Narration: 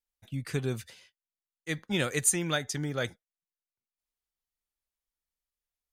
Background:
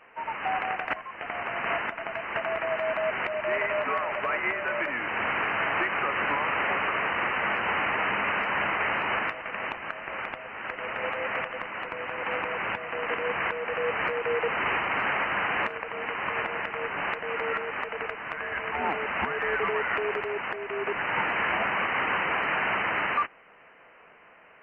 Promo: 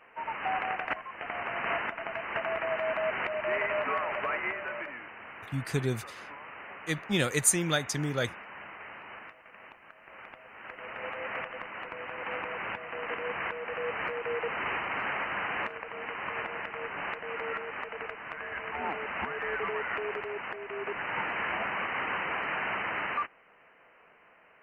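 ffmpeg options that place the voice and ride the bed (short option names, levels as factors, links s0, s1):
-filter_complex "[0:a]adelay=5200,volume=1.19[s0];[1:a]volume=3.16,afade=t=out:st=4.19:d=0.98:silence=0.16788,afade=t=in:st=9.94:d=1.45:silence=0.237137[s1];[s0][s1]amix=inputs=2:normalize=0"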